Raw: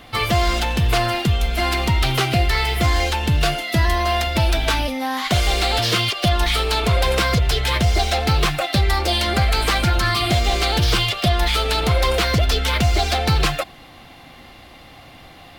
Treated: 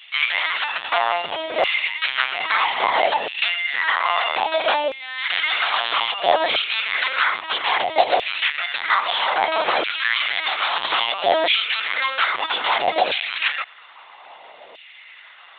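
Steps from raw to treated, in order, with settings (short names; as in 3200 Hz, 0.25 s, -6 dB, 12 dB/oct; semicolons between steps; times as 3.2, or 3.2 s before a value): LPC vocoder at 8 kHz pitch kept; LFO high-pass saw down 0.61 Hz 510–2700 Hz; gain -1 dB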